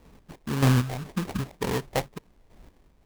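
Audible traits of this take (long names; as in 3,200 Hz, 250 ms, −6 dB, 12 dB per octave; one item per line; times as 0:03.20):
phaser sweep stages 2, 1.9 Hz, lowest notch 310–2,300 Hz
aliases and images of a low sample rate 1,400 Hz, jitter 20%
chopped level 1.6 Hz, depth 60%, duty 30%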